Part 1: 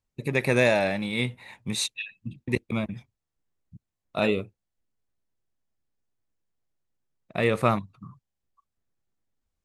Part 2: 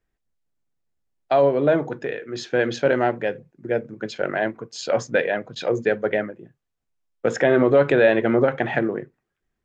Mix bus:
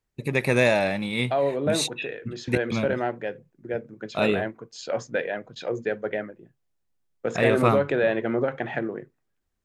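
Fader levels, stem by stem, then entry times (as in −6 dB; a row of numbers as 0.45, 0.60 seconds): +1.0, −6.5 decibels; 0.00, 0.00 seconds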